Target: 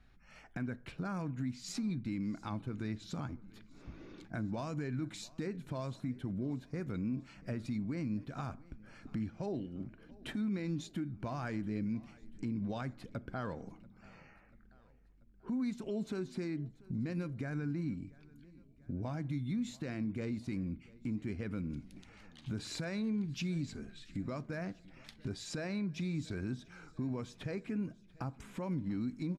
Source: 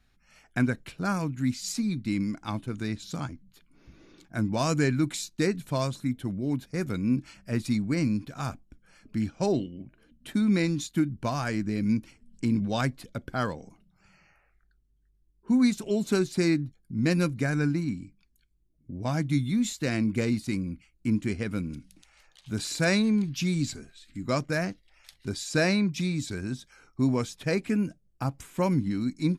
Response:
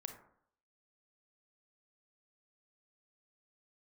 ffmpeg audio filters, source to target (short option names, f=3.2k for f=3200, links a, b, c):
-filter_complex "[0:a]aemphasis=mode=reproduction:type=75kf,acompressor=threshold=-40dB:ratio=3,alimiter=level_in=9dB:limit=-24dB:level=0:latency=1,volume=-9dB,aecho=1:1:687|1374|2061|2748:0.0708|0.0404|0.023|0.0131,asplit=2[a][b];[1:a]atrim=start_sample=2205[c];[b][c]afir=irnorm=-1:irlink=0,volume=-9.5dB[d];[a][d]amix=inputs=2:normalize=0,volume=2dB"